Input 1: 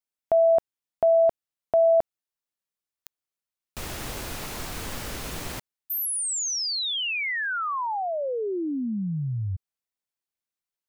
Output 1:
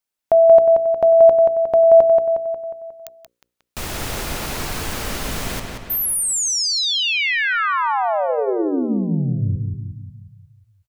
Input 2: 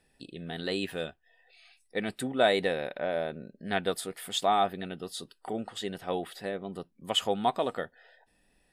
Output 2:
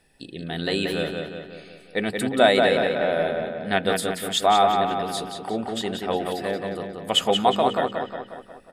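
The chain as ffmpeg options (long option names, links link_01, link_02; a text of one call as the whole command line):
ffmpeg -i in.wav -filter_complex "[0:a]bandreject=frequency=60:width_type=h:width=6,bandreject=frequency=120:width_type=h:width=6,bandreject=frequency=180:width_type=h:width=6,bandreject=frequency=240:width_type=h:width=6,bandreject=frequency=300:width_type=h:width=6,bandreject=frequency=360:width_type=h:width=6,bandreject=frequency=420:width_type=h:width=6,bandreject=frequency=480:width_type=h:width=6,bandreject=frequency=540:width_type=h:width=6,asplit=2[link_01][link_02];[link_02]adelay=180,lowpass=frequency=4800:poles=1,volume=-4dB,asplit=2[link_03][link_04];[link_04]adelay=180,lowpass=frequency=4800:poles=1,volume=0.55,asplit=2[link_05][link_06];[link_06]adelay=180,lowpass=frequency=4800:poles=1,volume=0.55,asplit=2[link_07][link_08];[link_08]adelay=180,lowpass=frequency=4800:poles=1,volume=0.55,asplit=2[link_09][link_10];[link_10]adelay=180,lowpass=frequency=4800:poles=1,volume=0.55,asplit=2[link_11][link_12];[link_12]adelay=180,lowpass=frequency=4800:poles=1,volume=0.55,asplit=2[link_13][link_14];[link_14]adelay=180,lowpass=frequency=4800:poles=1,volume=0.55[link_15];[link_01][link_03][link_05][link_07][link_09][link_11][link_13][link_15]amix=inputs=8:normalize=0,volume=7dB" out.wav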